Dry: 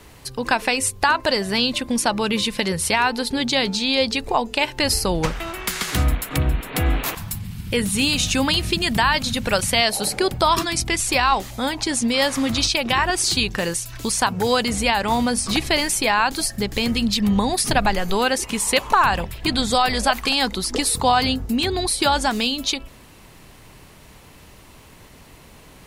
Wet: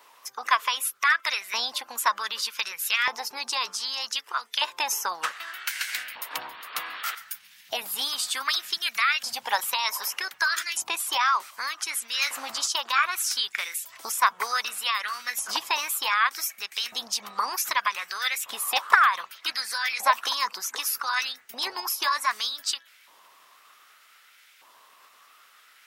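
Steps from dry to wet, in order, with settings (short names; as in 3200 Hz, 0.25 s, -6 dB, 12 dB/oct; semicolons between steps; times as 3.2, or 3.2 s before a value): harmonic-percussive split percussive +6 dB; LFO high-pass saw up 0.65 Hz 670–1600 Hz; formant shift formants +4 st; gain -11.5 dB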